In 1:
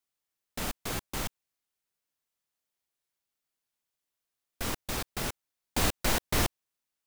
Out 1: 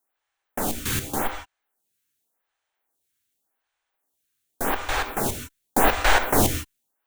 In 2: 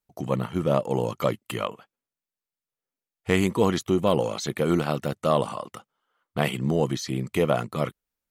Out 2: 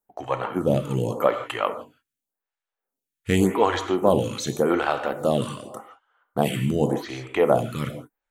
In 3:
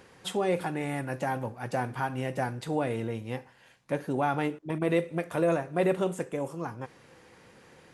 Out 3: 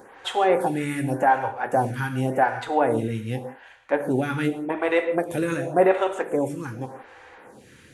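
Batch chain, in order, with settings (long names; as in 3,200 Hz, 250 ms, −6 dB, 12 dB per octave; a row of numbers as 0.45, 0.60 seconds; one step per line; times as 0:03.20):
thirty-one-band graphic EQ 160 Hz −6 dB, 800 Hz +6 dB, 1,600 Hz +5 dB, 5,000 Hz −6 dB
reverb whose tail is shaped and stops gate 190 ms flat, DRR 7 dB
phaser with staggered stages 0.87 Hz
loudness normalisation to −24 LKFS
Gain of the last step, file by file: +11.0, +4.5, +8.5 decibels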